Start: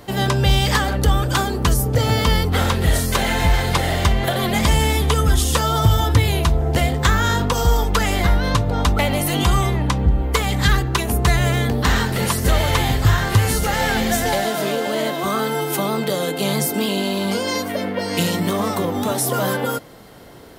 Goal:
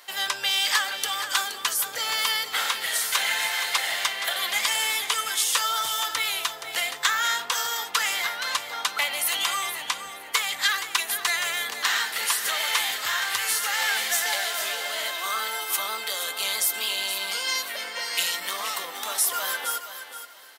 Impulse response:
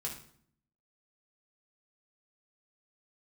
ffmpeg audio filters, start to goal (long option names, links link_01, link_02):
-filter_complex "[0:a]highpass=1500,asplit=2[link_01][link_02];[link_02]aecho=0:1:472|944|1416:0.299|0.0687|0.0158[link_03];[link_01][link_03]amix=inputs=2:normalize=0"